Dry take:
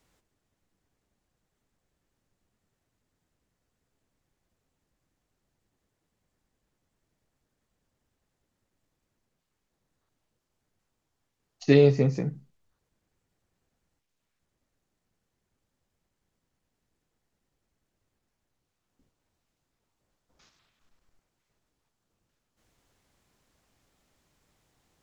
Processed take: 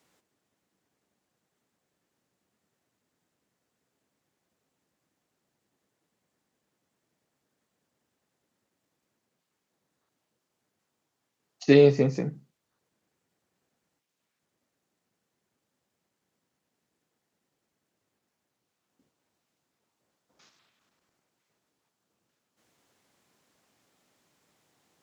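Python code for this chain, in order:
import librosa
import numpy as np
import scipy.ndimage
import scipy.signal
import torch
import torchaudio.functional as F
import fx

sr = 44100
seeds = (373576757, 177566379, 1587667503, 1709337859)

y = scipy.signal.sosfilt(scipy.signal.butter(2, 170.0, 'highpass', fs=sr, output='sos'), x)
y = y * 10.0 ** (2.0 / 20.0)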